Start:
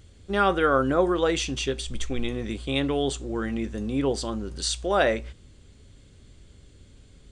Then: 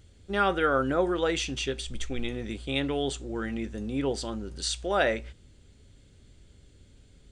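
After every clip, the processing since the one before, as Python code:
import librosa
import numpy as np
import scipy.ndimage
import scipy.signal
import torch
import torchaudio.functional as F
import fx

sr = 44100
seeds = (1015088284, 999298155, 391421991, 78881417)

y = fx.notch(x, sr, hz=1100.0, q=10.0)
y = fx.dynamic_eq(y, sr, hz=2100.0, q=0.73, threshold_db=-39.0, ratio=4.0, max_db=3)
y = F.gain(torch.from_numpy(y), -4.0).numpy()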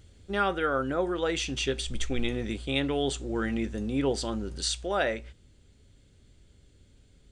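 y = fx.rider(x, sr, range_db=3, speed_s=0.5)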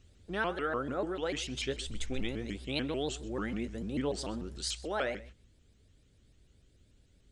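y = x + 10.0 ** (-19.5 / 20.0) * np.pad(x, (int(128 * sr / 1000.0), 0))[:len(x)]
y = fx.vibrato_shape(y, sr, shape='saw_up', rate_hz=6.8, depth_cents=250.0)
y = F.gain(torch.from_numpy(y), -6.0).numpy()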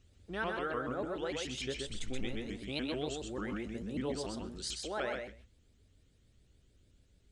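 y = x + 10.0 ** (-4.0 / 20.0) * np.pad(x, (int(127 * sr / 1000.0), 0))[:len(x)]
y = F.gain(torch.from_numpy(y), -4.0).numpy()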